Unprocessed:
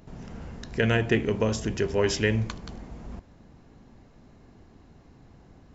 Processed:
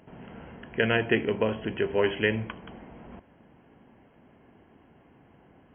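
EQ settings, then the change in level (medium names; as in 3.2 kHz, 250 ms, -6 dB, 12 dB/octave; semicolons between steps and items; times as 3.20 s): high-pass 290 Hz 6 dB/octave; brick-wall FIR low-pass 3.3 kHz; band-stop 1.2 kHz, Q 14; +1.5 dB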